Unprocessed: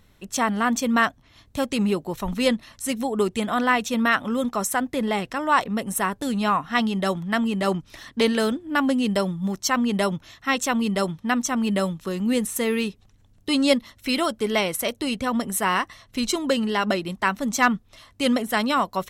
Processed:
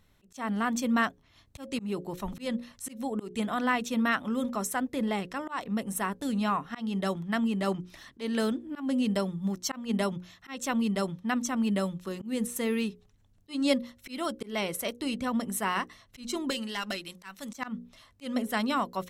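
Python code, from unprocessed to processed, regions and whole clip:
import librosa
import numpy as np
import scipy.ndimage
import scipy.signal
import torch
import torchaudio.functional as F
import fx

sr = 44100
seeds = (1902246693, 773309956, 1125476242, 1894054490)

y = fx.chain(x, sr, fx.tilt_shelf(db=-7.5, hz=1500.0),
    fx.tube_stage(drive_db=13.0, bias=0.35), at=(16.5, 17.56))
y = fx.hum_notches(y, sr, base_hz=60, count=9)
y = fx.dynamic_eq(y, sr, hz=230.0, q=1.2, threshold_db=-34.0, ratio=4.0, max_db=4)
y = fx.auto_swell(y, sr, attack_ms=201.0)
y = y * librosa.db_to_amplitude(-7.5)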